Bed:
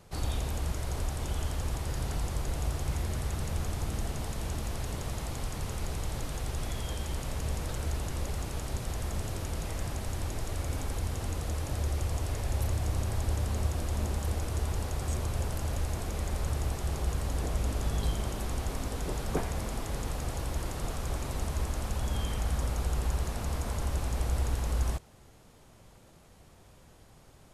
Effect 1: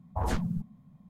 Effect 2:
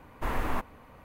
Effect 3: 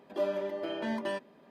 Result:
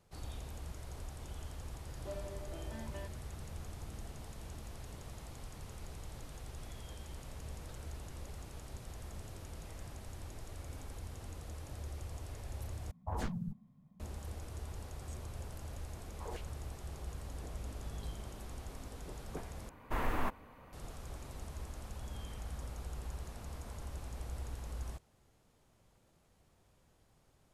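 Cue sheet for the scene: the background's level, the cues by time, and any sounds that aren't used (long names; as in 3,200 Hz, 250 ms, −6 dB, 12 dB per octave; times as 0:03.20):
bed −13 dB
0:01.89: mix in 3 −14.5 dB
0:12.91: overwrite with 1 −8 dB
0:16.04: mix in 1 −16.5 dB + high-pass on a step sequencer 9.3 Hz 290–3,900 Hz
0:19.69: overwrite with 2 −4 dB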